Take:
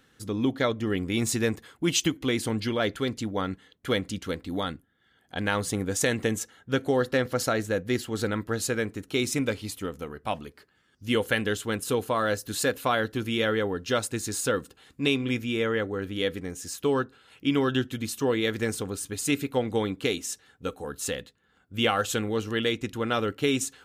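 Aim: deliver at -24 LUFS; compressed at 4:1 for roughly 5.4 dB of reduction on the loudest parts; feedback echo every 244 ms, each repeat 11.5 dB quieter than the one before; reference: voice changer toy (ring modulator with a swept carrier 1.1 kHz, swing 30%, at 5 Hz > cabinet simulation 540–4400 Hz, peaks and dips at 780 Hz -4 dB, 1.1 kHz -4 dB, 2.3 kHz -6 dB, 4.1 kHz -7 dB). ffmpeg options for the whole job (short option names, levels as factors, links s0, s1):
-af "acompressor=threshold=0.0501:ratio=4,aecho=1:1:244|488|732:0.266|0.0718|0.0194,aeval=exprs='val(0)*sin(2*PI*1100*n/s+1100*0.3/5*sin(2*PI*5*n/s))':c=same,highpass=540,equalizer=f=780:t=q:w=4:g=-4,equalizer=f=1100:t=q:w=4:g=-4,equalizer=f=2300:t=q:w=4:g=-6,equalizer=f=4100:t=q:w=4:g=-7,lowpass=f=4400:w=0.5412,lowpass=f=4400:w=1.3066,volume=4.47"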